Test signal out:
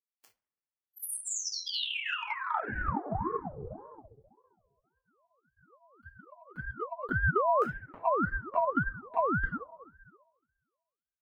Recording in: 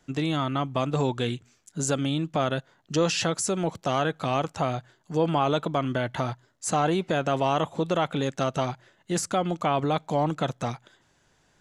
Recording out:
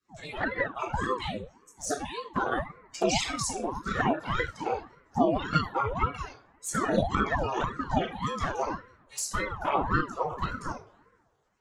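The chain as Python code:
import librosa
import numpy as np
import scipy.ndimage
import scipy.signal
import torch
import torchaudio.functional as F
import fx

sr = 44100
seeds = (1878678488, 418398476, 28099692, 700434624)

p1 = fx.spec_dropout(x, sr, seeds[0], share_pct=32)
p2 = p1 + fx.echo_bbd(p1, sr, ms=66, stages=1024, feedback_pct=80, wet_db=-16.0, dry=0)
p3 = fx.room_shoebox(p2, sr, seeds[1], volume_m3=670.0, walls='furnished', distance_m=5.0)
p4 = fx.noise_reduce_blind(p3, sr, reduce_db=13)
p5 = scipy.signal.sosfilt(scipy.signal.butter(6, 260.0, 'highpass', fs=sr, output='sos'), p4)
p6 = fx.env_flanger(p5, sr, rest_ms=8.2, full_db=-15.0)
y = fx.ring_lfo(p6, sr, carrier_hz=460.0, swing_pct=70, hz=1.8)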